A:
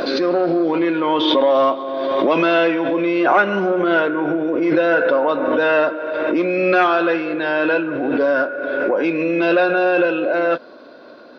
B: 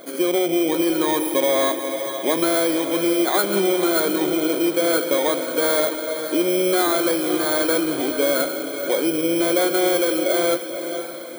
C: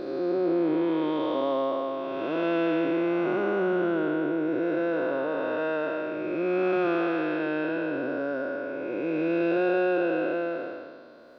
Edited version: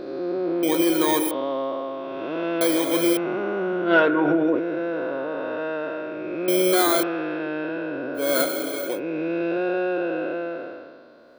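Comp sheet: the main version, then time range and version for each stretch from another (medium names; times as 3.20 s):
C
0.63–1.31 s: from B
2.61–3.17 s: from B
3.90–4.57 s: from A, crossfade 0.10 s
6.48–7.03 s: from B
8.26–8.88 s: from B, crossfade 0.24 s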